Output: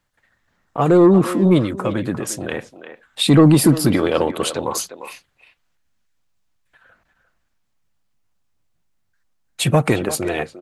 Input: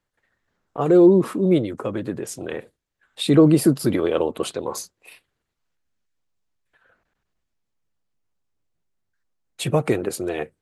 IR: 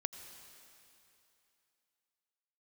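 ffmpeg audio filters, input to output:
-filter_complex "[0:a]acontrast=59,equalizer=f=410:w=1.8:g=-7,asplit=2[a][b];[b]adelay=350,highpass=300,lowpass=3.4k,asoftclip=type=hard:threshold=-11.5dB,volume=-11dB[c];[a][c]amix=inputs=2:normalize=0,volume=1.5dB"

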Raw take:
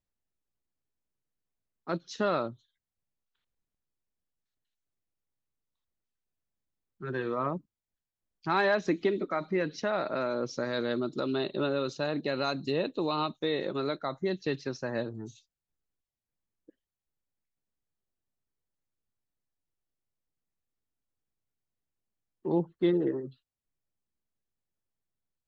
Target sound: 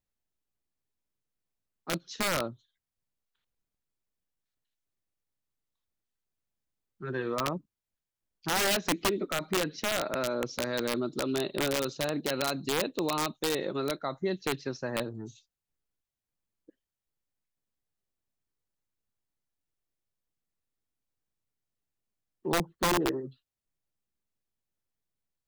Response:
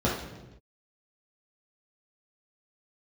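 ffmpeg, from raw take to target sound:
-af "aeval=exprs='(mod(10.6*val(0)+1,2)-1)/10.6':c=same"

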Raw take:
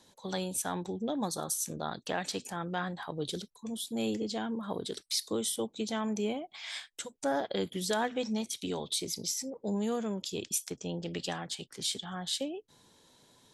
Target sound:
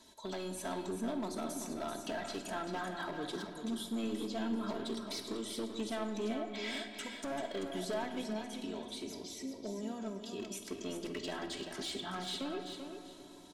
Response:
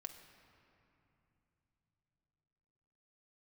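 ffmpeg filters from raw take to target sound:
-filter_complex "[0:a]acrossover=split=2900[a][b];[b]acompressor=threshold=-46dB:ratio=4:attack=1:release=60[c];[a][c]amix=inputs=2:normalize=0,aecho=1:1:3.1:0.68,acompressor=threshold=-35dB:ratio=4,asettb=1/sr,asplit=3[d][e][f];[d]atrim=end=8.214[g];[e]atrim=start=8.21:end=10.4,asetpts=PTS-STARTPTS,afade=t=in:d=0.004:c=qsin,afade=t=out:st=2.186:d=0.004:c=qsin,flanger=delay=7.6:depth=5.4:regen=-80:speed=1.3:shape=triangular[h];[f]atrim=start=10.396[i];[g][h]acrossfade=d=0.004:c1=hsin:c2=qsin[j];[j][i]acrossfade=d=0.004:c1=qsin:c2=hsin,asoftclip=type=hard:threshold=-34.5dB,aecho=1:1:388|776|1164:0.422|0.101|0.0243[k];[1:a]atrim=start_sample=2205[l];[k][l]afir=irnorm=-1:irlink=0,volume=5.5dB"

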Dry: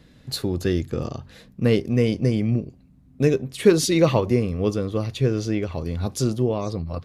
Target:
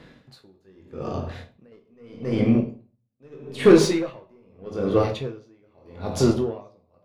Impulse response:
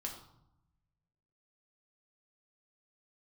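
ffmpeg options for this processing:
-filter_complex "[0:a]asettb=1/sr,asplit=3[a][b][c];[a]atrim=end=1.104[d];[b]atrim=start=1.1:end=1.72,asetpts=PTS-STARTPTS,afade=t=in:d=0.004:c=qsin,afade=t=out:st=0.616:d=0.004:c=qsin,acompressor=threshold=-31dB:ratio=2.5[e];[c]atrim=start=1.716[f];[d][e]acrossfade=d=0.004:c1=hsin:c2=qsin[g];[g][f]acrossfade=d=0.004:c1=qsin:c2=hsin,asplit=2[h][i];[i]highpass=f=720:p=1,volume=19dB,asoftclip=type=tanh:threshold=-4dB[j];[h][j]amix=inputs=2:normalize=0,lowpass=f=1.1k:p=1,volume=-6dB,asplit=2[k][l];[1:a]atrim=start_sample=2205,asetrate=33516,aresample=44100,adelay=21[m];[l][m]afir=irnorm=-1:irlink=0,volume=-3dB[n];[k][n]amix=inputs=2:normalize=0,aeval=exprs='val(0)*pow(10,-39*(0.5-0.5*cos(2*PI*0.8*n/s))/20)':c=same"

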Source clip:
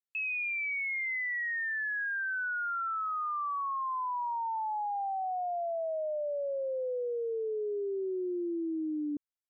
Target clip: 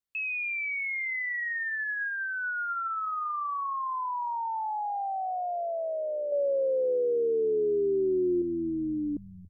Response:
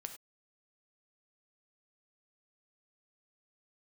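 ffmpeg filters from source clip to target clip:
-filter_complex "[0:a]lowshelf=f=120:g=11.5,asettb=1/sr,asplit=3[a][b][c];[a]atrim=end=6.324[d];[b]atrim=start=6.32:end=8.42,asetpts=PTS-STARTPTS,afade=t=in:d=0.004:c=qsin,afade=t=out:st=2.096:d=0.004:c=qsin,acontrast=27[e];[c]atrim=start=8.416[f];[d][e]acrossfade=d=0.004:c1=hsin:c2=qsin[g];[g][f]acrossfade=d=0.004:c1=qsin:c2=hsin,asplit=6[h][i][j][k][l][m];[i]adelay=280,afreqshift=-110,volume=-17.5dB[n];[j]adelay=560,afreqshift=-220,volume=-22.9dB[o];[k]adelay=840,afreqshift=-330,volume=-28.2dB[p];[l]adelay=1120,afreqshift=-440,volume=-33.6dB[q];[m]adelay=1400,afreqshift=-550,volume=-38.9dB[r];[h][n][o][p][q][r]amix=inputs=6:normalize=0,volume=1.5dB"

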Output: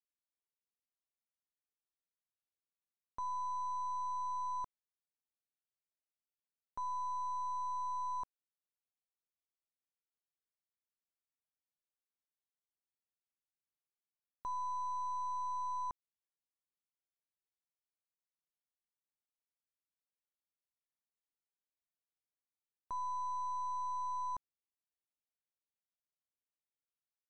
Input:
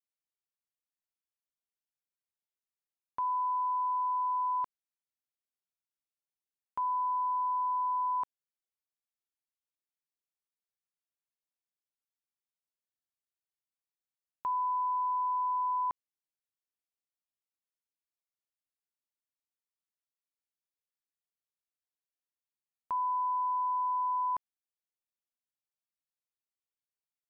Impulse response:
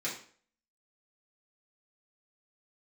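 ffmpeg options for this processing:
-af "aeval=exprs='0.0422*(cos(1*acos(clip(val(0)/0.0422,-1,1)))-cos(1*PI/2))+0.00422*(cos(2*acos(clip(val(0)/0.0422,-1,1)))-cos(2*PI/2))+0.000473*(cos(4*acos(clip(val(0)/0.0422,-1,1)))-cos(4*PI/2))+0.00944*(cos(6*acos(clip(val(0)/0.0422,-1,1)))-cos(6*PI/2))+0.00299*(cos(8*acos(clip(val(0)/0.0422,-1,1)))-cos(8*PI/2))':c=same,lowpass=f=1k:p=1,volume=-5dB"

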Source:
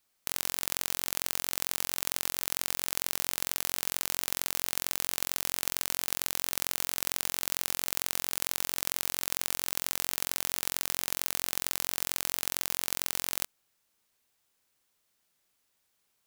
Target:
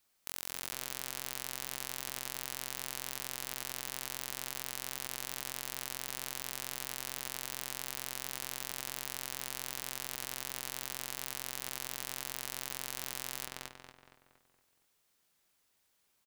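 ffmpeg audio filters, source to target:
-filter_complex "[0:a]asplit=2[a][b];[b]adelay=233,lowpass=f=3.2k:p=1,volume=-6.5dB,asplit=2[c][d];[d]adelay=233,lowpass=f=3.2k:p=1,volume=0.48,asplit=2[e][f];[f]adelay=233,lowpass=f=3.2k:p=1,volume=0.48,asplit=2[g][h];[h]adelay=233,lowpass=f=3.2k:p=1,volume=0.48,asplit=2[i][j];[j]adelay=233,lowpass=f=3.2k:p=1,volume=0.48,asplit=2[k][l];[l]adelay=233,lowpass=f=3.2k:p=1,volume=0.48[m];[a][c][e][g][i][k][m]amix=inputs=7:normalize=0,alimiter=limit=-12dB:level=0:latency=1:release=21"

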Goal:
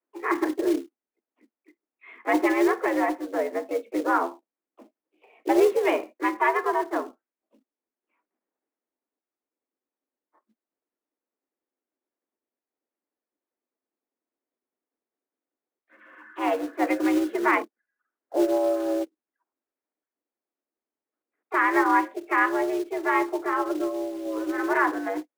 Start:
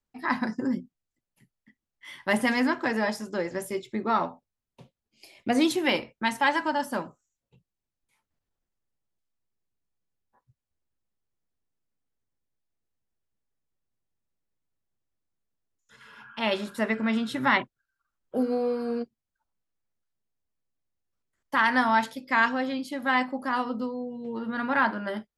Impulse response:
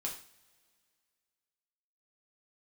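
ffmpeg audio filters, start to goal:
-filter_complex "[0:a]highpass=f=170:t=q:w=0.5412,highpass=f=170:t=q:w=1.307,lowpass=f=2.4k:t=q:w=0.5176,lowpass=f=2.4k:t=q:w=0.7071,lowpass=f=2.4k:t=q:w=1.932,afreqshift=90,tiltshelf=f=1.4k:g=4.5,acrossover=split=530[a][b];[a]acrusher=bits=4:mode=log:mix=0:aa=0.000001[c];[c][b]amix=inputs=2:normalize=0,asplit=2[d][e];[e]asetrate=52444,aresample=44100,atempo=0.840896,volume=-12dB[f];[d][f]amix=inputs=2:normalize=0"

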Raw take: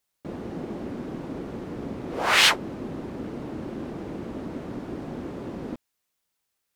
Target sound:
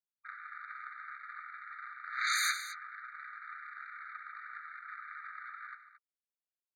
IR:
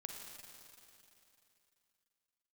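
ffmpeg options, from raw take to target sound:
-af "lowpass=2.2k,anlmdn=0.398,highpass=f=80:w=0.5412,highpass=f=80:w=1.3066,lowshelf=f=140:g=7.5,acompressor=threshold=-30dB:ratio=4,afreqshift=-39,aeval=exprs='0.1*sin(PI/2*4.47*val(0)/0.1)':c=same,aecho=1:1:70|96|152|221:0.188|0.188|0.126|0.211,afftfilt=real='re*eq(mod(floor(b*sr/1024/1200),2),1)':imag='im*eq(mod(floor(b*sr/1024/1200),2),1)':win_size=1024:overlap=0.75,volume=-4.5dB"

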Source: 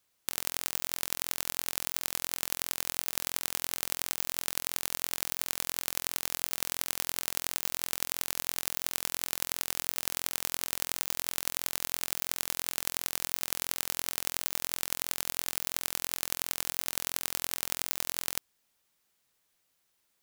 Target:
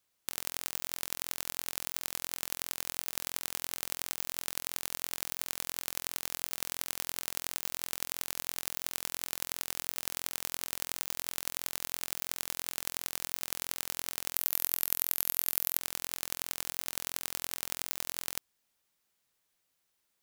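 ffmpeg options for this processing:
-filter_complex "[0:a]asettb=1/sr,asplit=3[a][b][c];[a]atrim=end=14.364[d];[b]atrim=start=14.36:end=15.78,asetpts=PTS-STARTPTS,afade=t=in:d=0.004:c=qsin,afade=t=out:st=1.416:d=0.004:c=qsin,equalizer=f=13k:t=o:w=0.54:g=13.5[e];[c]atrim=start=15.776[f];[d][e]acrossfade=d=0.004:c1=hsin:c2=qsin[g];[g][f]acrossfade=d=0.004:c1=qsin:c2=hsin,volume=-3.5dB"

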